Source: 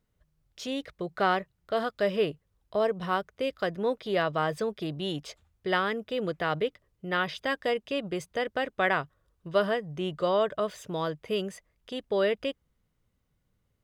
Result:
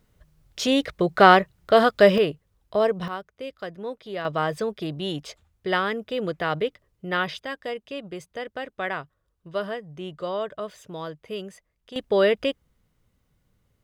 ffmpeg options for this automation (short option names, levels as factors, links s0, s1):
-af "asetnsamples=n=441:p=0,asendcmd='2.18 volume volume 5dB;3.08 volume volume -5dB;4.25 volume volume 3dB;7.39 volume volume -3.5dB;11.96 volume volume 6.5dB',volume=3.98"